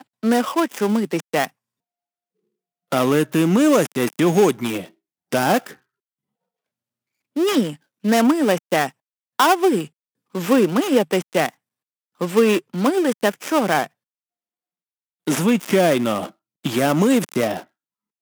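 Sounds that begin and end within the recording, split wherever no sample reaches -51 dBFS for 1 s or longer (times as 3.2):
2.92–5.79
7.36–13.87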